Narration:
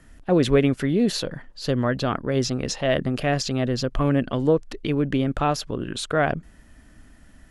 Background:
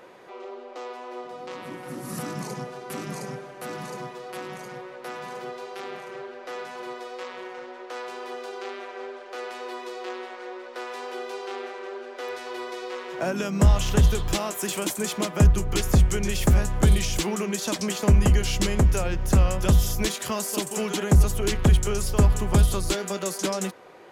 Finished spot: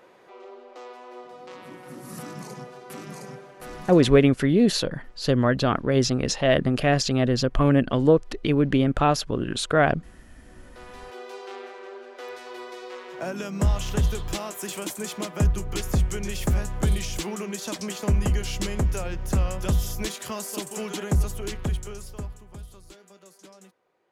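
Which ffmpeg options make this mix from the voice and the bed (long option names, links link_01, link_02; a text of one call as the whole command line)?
ffmpeg -i stem1.wav -i stem2.wav -filter_complex "[0:a]adelay=3600,volume=2dB[link_01];[1:a]volume=16.5dB,afade=type=out:start_time=3.98:duration=0.35:silence=0.0891251,afade=type=in:start_time=10.41:duration=0.93:silence=0.0841395,afade=type=out:start_time=21.02:duration=1.41:silence=0.11885[link_02];[link_01][link_02]amix=inputs=2:normalize=0" out.wav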